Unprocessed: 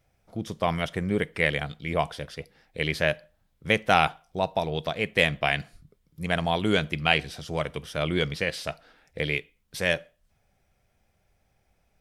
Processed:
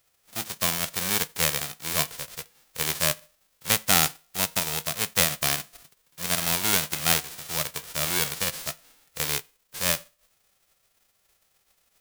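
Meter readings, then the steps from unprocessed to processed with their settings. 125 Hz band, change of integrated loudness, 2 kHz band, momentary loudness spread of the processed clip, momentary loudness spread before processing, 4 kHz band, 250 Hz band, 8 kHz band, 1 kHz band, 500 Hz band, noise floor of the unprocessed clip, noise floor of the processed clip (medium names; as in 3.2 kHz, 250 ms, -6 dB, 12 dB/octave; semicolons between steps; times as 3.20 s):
-5.0 dB, +2.0 dB, -3.0 dB, 14 LU, 14 LU, +4.0 dB, -6.0 dB, +21.0 dB, -4.5 dB, -8.0 dB, -71 dBFS, -70 dBFS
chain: formants flattened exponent 0.1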